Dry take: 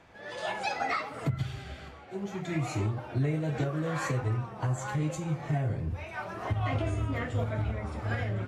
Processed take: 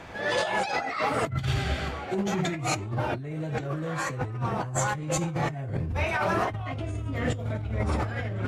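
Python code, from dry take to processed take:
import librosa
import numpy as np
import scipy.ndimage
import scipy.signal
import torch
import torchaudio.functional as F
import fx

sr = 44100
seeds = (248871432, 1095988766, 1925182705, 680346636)

y = fx.peak_eq(x, sr, hz=1200.0, db=-5.5, octaves=2.0, at=(6.72, 7.89))
y = fx.over_compress(y, sr, threshold_db=-38.0, ratio=-1.0)
y = F.gain(torch.from_numpy(y), 8.5).numpy()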